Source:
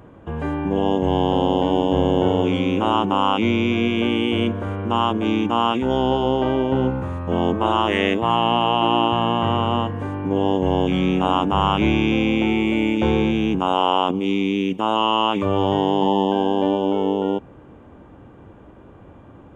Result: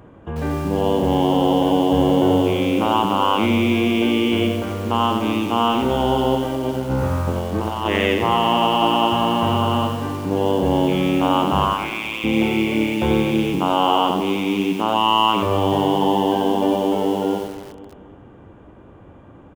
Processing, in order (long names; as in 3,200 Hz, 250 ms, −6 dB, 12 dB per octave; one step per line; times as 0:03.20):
0:06.35–0:07.86: compressor whose output falls as the input rises −23 dBFS, ratio −0.5
0:11.64–0:12.23: resonant band-pass 1,200 Hz → 2,900 Hz, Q 1.1
on a send: repeating echo 252 ms, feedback 47%, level −14 dB
on the sum: feedback echo at a low word length 90 ms, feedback 35%, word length 6 bits, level −4.5 dB